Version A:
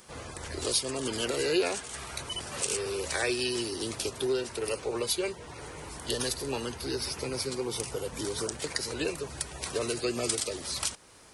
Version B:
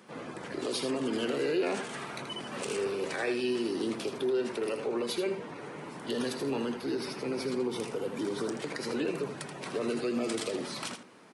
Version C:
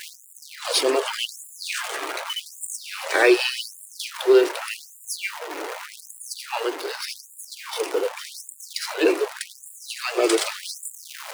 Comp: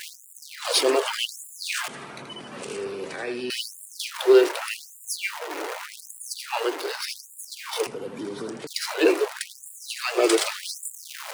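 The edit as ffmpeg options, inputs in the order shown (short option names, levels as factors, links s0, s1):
-filter_complex "[1:a]asplit=2[s0][s1];[2:a]asplit=3[s2][s3][s4];[s2]atrim=end=1.882[s5];[s0]atrim=start=1.878:end=3.502[s6];[s3]atrim=start=3.498:end=7.872[s7];[s1]atrim=start=7.868:end=8.672[s8];[s4]atrim=start=8.668[s9];[s5][s6]acrossfade=d=0.004:c1=hsin:c2=hsin[s10];[s10][s7]acrossfade=d=0.004:c1=hsin:c2=hsin[s11];[s11][s8]acrossfade=d=0.004:c1=hsin:c2=hsin[s12];[s12][s9]acrossfade=d=0.004:c1=hsin:c2=hsin"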